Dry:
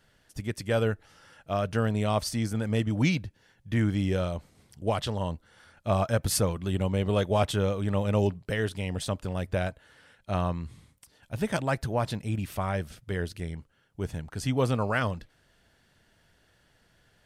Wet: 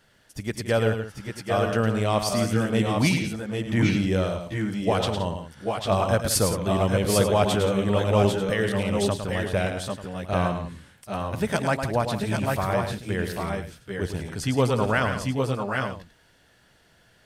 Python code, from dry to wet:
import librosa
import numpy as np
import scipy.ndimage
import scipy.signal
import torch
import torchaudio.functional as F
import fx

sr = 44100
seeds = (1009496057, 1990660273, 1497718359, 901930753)

y = fx.low_shelf(x, sr, hz=120.0, db=-6.0)
y = fx.echo_multitap(y, sr, ms=(107, 170, 787, 802, 890), db=(-7.5, -13.5, -8.5, -5.5, -15.0))
y = F.gain(torch.from_numpy(y), 4.0).numpy()